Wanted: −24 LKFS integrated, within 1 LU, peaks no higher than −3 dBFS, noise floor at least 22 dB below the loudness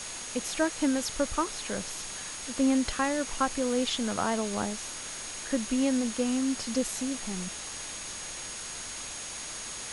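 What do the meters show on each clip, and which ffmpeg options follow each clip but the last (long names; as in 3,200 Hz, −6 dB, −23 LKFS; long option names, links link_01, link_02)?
interfering tone 6,600 Hz; level of the tone −42 dBFS; background noise floor −39 dBFS; target noise floor −53 dBFS; integrated loudness −30.5 LKFS; sample peak −14.5 dBFS; target loudness −24.0 LKFS
→ -af "bandreject=frequency=6600:width=30"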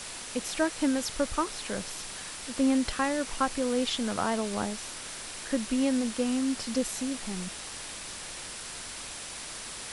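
interfering tone none found; background noise floor −41 dBFS; target noise floor −53 dBFS
→ -af "afftdn=noise_reduction=12:noise_floor=-41"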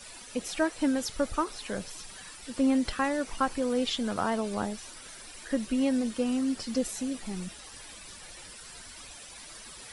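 background noise floor −47 dBFS; target noise floor −53 dBFS
→ -af "afftdn=noise_reduction=6:noise_floor=-47"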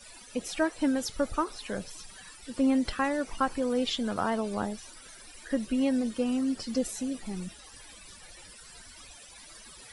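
background noise floor −50 dBFS; target noise floor −53 dBFS
→ -af "afftdn=noise_reduction=6:noise_floor=-50"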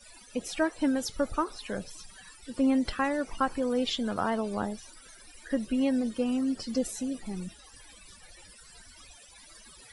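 background noise floor −53 dBFS; integrated loudness −30.5 LKFS; sample peak −15.5 dBFS; target loudness −24.0 LKFS
→ -af "volume=6.5dB"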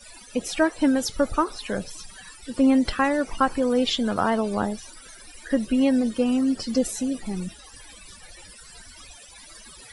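integrated loudness −24.0 LKFS; sample peak −9.0 dBFS; background noise floor −47 dBFS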